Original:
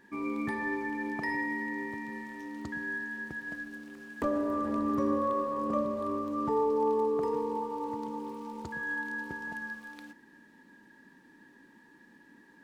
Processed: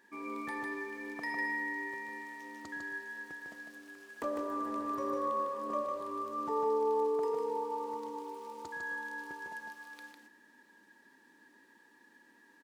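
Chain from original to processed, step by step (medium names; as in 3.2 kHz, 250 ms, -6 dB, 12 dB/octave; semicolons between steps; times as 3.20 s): tone controls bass -15 dB, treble +4 dB; delay 152 ms -4 dB; trim -4 dB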